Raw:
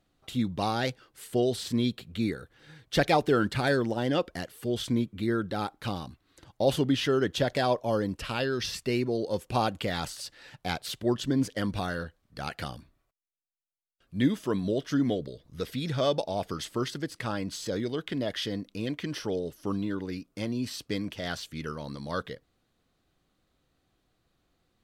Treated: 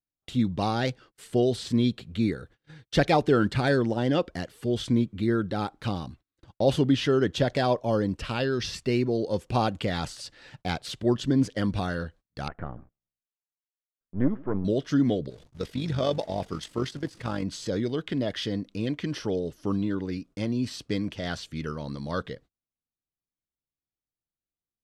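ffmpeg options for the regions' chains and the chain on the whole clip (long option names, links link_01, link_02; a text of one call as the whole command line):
ffmpeg -i in.wav -filter_complex "[0:a]asettb=1/sr,asplit=3[link_01][link_02][link_03];[link_01]atrim=end=12.484[link_04];[link_02]atrim=start=12.48:end=14.65,asetpts=PTS-STARTPTS,afade=type=in:duration=0.004:curve=qsin,afade=type=out:start_time=2.166:duration=0.004:curve=qsin,aeval=exprs='if(lt(val(0),0),0.251*val(0),val(0))':channel_layout=same,lowpass=frequency=1600:width=0.5412,lowpass=frequency=1600:width=1.3066,asplit=2[link_05][link_06];[link_06]adelay=144,lowpass=frequency=1100:poles=1,volume=-23.5dB,asplit=2[link_07][link_08];[link_08]adelay=144,lowpass=frequency=1100:poles=1,volume=0.53,asplit=2[link_09][link_10];[link_10]adelay=144,lowpass=frequency=1100:poles=1,volume=0.53[link_11];[link_05][link_07][link_09][link_11]amix=inputs=4:normalize=0,atrim=end_sample=95697[link_12];[link_03]atrim=start=14.646[link_13];[link_04][link_12]acrossfade=duration=0.004:curve1=hsin:curve2=qsin[link_14];[link_14][link_13]acrossfade=duration=0.004:curve1=qsin:curve2=hsin,asettb=1/sr,asplit=3[link_15][link_16][link_17];[link_15]atrim=end=15.304[link_18];[link_16]atrim=start=15.3:end=17.43,asetpts=PTS-STARTPTS,afade=type=in:duration=0.004:curve=qsin,afade=type=out:start_time=2.126:duration=0.004:curve=qsin,aeval=exprs='val(0)+0.5*0.00841*sgn(val(0))':channel_layout=same,agate=range=-7dB:threshold=-36dB:ratio=16:release=100:detection=peak,tremolo=f=48:d=0.571[link_19];[link_17]atrim=start=17.426[link_20];[link_18][link_19]acrossfade=duration=0.004:curve1=hsin:curve2=qsin[link_21];[link_21][link_20]acrossfade=duration=0.004:curve1=qsin:curve2=hsin,agate=range=-31dB:threshold=-52dB:ratio=16:detection=peak,lowpass=8500,lowshelf=frequency=400:gain=5" out.wav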